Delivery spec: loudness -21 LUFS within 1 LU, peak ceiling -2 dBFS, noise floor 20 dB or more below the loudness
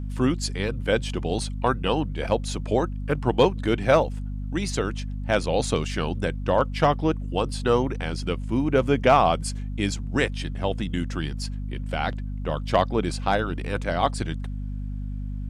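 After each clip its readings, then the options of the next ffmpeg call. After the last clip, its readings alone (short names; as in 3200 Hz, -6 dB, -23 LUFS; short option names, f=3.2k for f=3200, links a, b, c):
hum 50 Hz; harmonics up to 250 Hz; hum level -28 dBFS; loudness -25.5 LUFS; peak -7.5 dBFS; loudness target -21.0 LUFS
-> -af "bandreject=f=50:t=h:w=6,bandreject=f=100:t=h:w=6,bandreject=f=150:t=h:w=6,bandreject=f=200:t=h:w=6,bandreject=f=250:t=h:w=6"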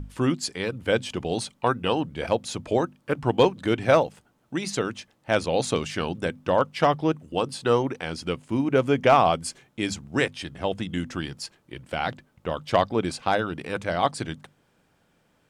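hum none; loudness -25.5 LUFS; peak -7.5 dBFS; loudness target -21.0 LUFS
-> -af "volume=4.5dB"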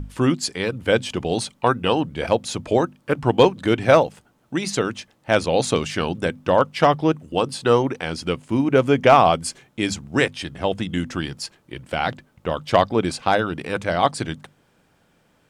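loudness -21.0 LUFS; peak -3.0 dBFS; noise floor -62 dBFS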